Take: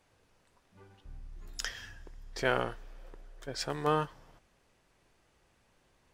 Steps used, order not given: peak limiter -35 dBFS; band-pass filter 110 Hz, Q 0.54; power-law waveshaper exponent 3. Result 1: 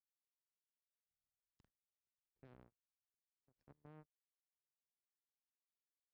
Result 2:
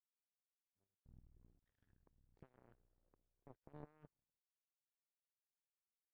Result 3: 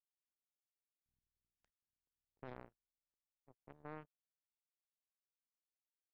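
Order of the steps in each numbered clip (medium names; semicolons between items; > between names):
power-law waveshaper > peak limiter > band-pass filter; peak limiter > band-pass filter > power-law waveshaper; band-pass filter > power-law waveshaper > peak limiter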